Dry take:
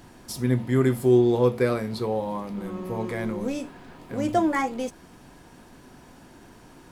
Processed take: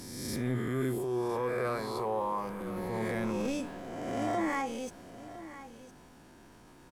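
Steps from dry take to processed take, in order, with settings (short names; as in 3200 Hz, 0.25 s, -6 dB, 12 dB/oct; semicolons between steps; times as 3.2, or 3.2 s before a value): spectral swells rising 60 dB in 1.31 s; 0.98–2.61 fifteen-band EQ 100 Hz -8 dB, 250 Hz -10 dB, 1000 Hz +6 dB, 4000 Hz -7 dB; transient shaper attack -9 dB, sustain +3 dB; vocal rider within 3 dB 0.5 s; echo 1.009 s -15 dB; gain -8.5 dB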